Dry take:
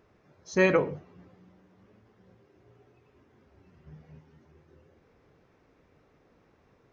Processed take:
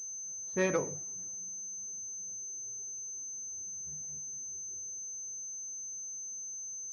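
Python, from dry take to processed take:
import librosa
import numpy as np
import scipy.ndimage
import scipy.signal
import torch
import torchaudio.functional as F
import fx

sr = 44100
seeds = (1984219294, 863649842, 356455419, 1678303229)

y = fx.pwm(x, sr, carrier_hz=6200.0)
y = y * 10.0 ** (-7.5 / 20.0)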